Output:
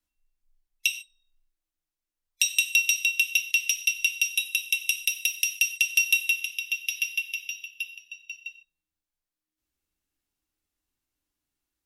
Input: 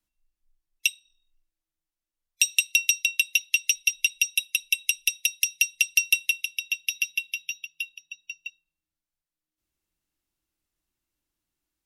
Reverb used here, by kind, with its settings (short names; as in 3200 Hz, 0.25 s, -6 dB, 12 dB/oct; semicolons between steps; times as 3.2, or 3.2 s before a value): non-linear reverb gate 0.17 s falling, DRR 4.5 dB; gain -2 dB